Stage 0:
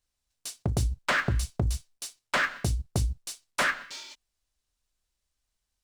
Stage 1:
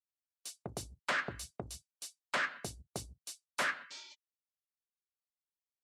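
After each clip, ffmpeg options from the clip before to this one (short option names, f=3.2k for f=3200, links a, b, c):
-filter_complex "[0:a]highpass=99,afftdn=nr=17:nf=-53,acrossover=split=310|3800[a][b][c];[a]acompressor=threshold=-39dB:ratio=6[d];[d][b][c]amix=inputs=3:normalize=0,volume=-7.5dB"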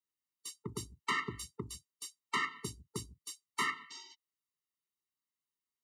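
-af "highpass=82,afftfilt=real='re*eq(mod(floor(b*sr/1024/450),2),0)':imag='im*eq(mod(floor(b*sr/1024/450),2),0)':win_size=1024:overlap=0.75,volume=3.5dB"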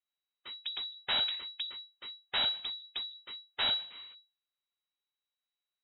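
-af "aeval=exprs='abs(val(0))':c=same,aeval=exprs='0.0944*(cos(1*acos(clip(val(0)/0.0944,-1,1)))-cos(1*PI/2))+0.0106*(cos(6*acos(clip(val(0)/0.0944,-1,1)))-cos(6*PI/2))':c=same,lowpass=f=3.3k:t=q:w=0.5098,lowpass=f=3.3k:t=q:w=0.6013,lowpass=f=3.3k:t=q:w=0.9,lowpass=f=3.3k:t=q:w=2.563,afreqshift=-3900,volume=2dB"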